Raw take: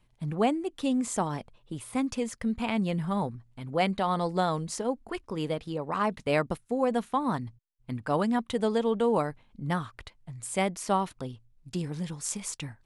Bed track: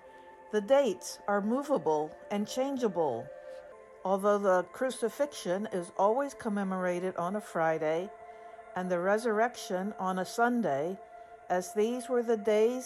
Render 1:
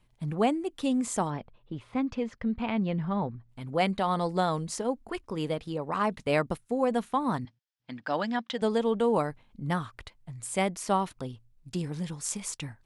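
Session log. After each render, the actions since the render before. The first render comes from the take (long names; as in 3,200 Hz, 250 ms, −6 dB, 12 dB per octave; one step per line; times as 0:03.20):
0:01.30–0:03.49: high-frequency loss of the air 220 metres
0:07.45–0:08.62: loudspeaker in its box 270–6,200 Hz, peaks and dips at 410 Hz −10 dB, 1,100 Hz −4 dB, 1,700 Hz +5 dB, 3,300 Hz +5 dB, 5,100 Hz +5 dB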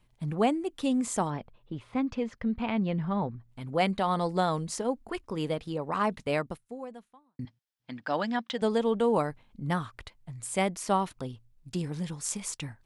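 0:06.15–0:07.39: fade out quadratic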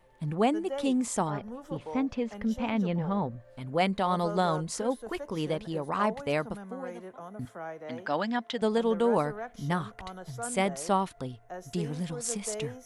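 mix in bed track −11 dB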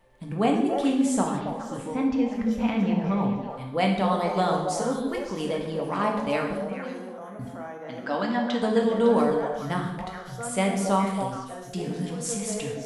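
on a send: echo through a band-pass that steps 139 ms, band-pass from 240 Hz, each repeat 1.4 octaves, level −1 dB
on the sum: reverb whose tail is shaped and stops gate 260 ms falling, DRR 1 dB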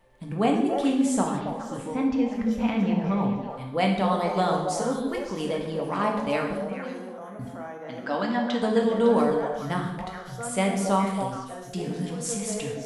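no processing that can be heard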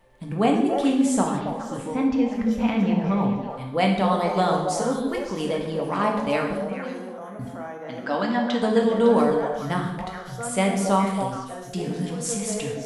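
level +2.5 dB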